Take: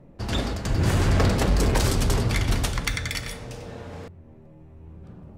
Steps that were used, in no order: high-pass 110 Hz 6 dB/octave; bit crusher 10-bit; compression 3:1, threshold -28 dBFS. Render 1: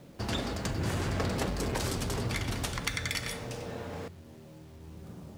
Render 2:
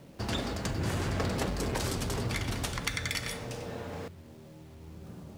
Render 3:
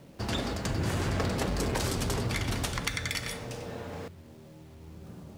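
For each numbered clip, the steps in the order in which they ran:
compression > bit crusher > high-pass; compression > high-pass > bit crusher; high-pass > compression > bit crusher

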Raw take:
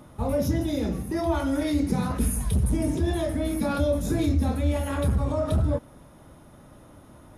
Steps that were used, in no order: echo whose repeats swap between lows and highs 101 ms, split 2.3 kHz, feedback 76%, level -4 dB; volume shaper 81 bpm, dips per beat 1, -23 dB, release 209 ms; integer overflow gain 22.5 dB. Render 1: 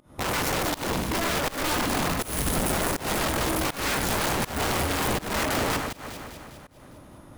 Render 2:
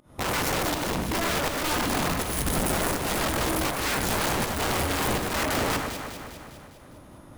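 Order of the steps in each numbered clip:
integer overflow > echo whose repeats swap between lows and highs > volume shaper; integer overflow > volume shaper > echo whose repeats swap between lows and highs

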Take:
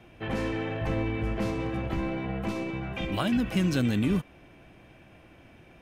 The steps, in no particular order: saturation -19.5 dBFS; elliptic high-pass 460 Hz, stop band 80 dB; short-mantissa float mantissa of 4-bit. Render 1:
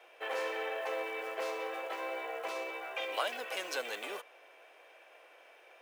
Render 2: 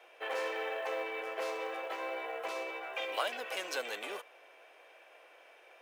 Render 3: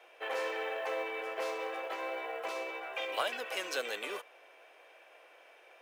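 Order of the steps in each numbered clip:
short-mantissa float > saturation > elliptic high-pass; saturation > elliptic high-pass > short-mantissa float; elliptic high-pass > short-mantissa float > saturation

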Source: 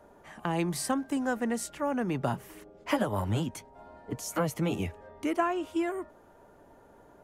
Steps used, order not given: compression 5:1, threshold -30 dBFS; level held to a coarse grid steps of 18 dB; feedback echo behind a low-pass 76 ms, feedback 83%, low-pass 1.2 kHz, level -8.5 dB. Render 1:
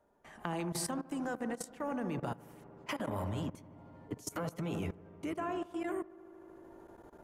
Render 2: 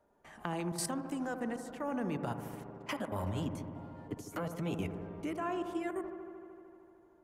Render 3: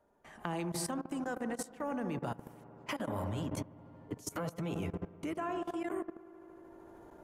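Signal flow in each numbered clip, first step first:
compression > feedback echo behind a low-pass > level held to a coarse grid; compression > level held to a coarse grid > feedback echo behind a low-pass; feedback echo behind a low-pass > compression > level held to a coarse grid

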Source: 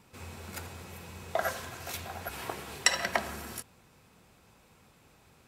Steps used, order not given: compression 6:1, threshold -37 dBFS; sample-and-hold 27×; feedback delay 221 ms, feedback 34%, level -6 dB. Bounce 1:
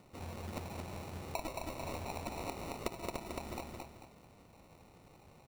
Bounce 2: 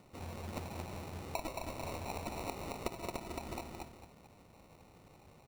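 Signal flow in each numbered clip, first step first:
sample-and-hold > feedback delay > compression; feedback delay > compression > sample-and-hold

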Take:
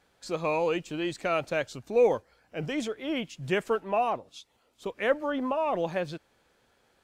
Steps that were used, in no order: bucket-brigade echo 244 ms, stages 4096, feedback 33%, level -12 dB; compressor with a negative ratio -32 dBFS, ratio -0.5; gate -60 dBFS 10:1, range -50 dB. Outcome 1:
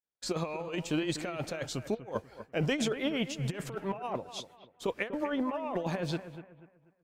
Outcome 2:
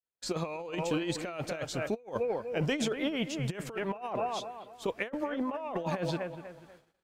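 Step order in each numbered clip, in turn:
gate > compressor with a negative ratio > bucket-brigade echo; bucket-brigade echo > gate > compressor with a negative ratio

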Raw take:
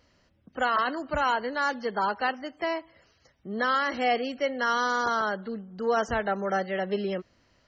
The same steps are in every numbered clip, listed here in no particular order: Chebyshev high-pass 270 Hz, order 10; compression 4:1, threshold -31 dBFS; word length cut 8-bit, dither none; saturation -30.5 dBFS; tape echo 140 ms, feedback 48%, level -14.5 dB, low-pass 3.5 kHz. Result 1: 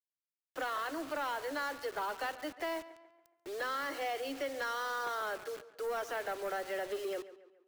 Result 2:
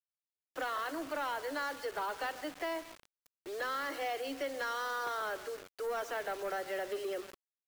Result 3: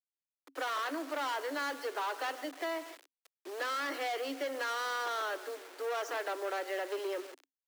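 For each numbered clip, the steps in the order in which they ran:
compression > Chebyshev high-pass > word length cut > tape echo > saturation; compression > Chebyshev high-pass > tape echo > word length cut > saturation; tape echo > saturation > word length cut > Chebyshev high-pass > compression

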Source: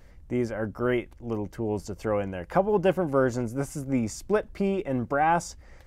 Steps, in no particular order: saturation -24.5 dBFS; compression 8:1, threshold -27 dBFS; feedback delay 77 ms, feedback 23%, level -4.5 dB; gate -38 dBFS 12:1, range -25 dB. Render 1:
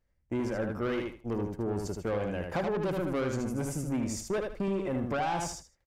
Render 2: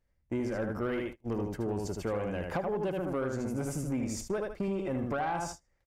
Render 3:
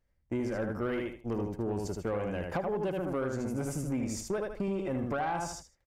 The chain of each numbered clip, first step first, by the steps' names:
gate > saturation > feedback delay > compression; feedback delay > compression > saturation > gate; gate > feedback delay > compression > saturation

